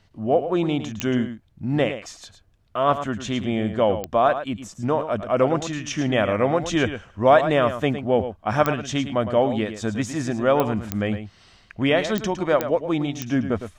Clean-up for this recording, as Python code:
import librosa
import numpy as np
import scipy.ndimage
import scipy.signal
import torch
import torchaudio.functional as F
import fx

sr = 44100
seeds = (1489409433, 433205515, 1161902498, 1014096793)

y = fx.fix_declick_ar(x, sr, threshold=10.0)
y = fx.fix_echo_inverse(y, sr, delay_ms=109, level_db=-10.5)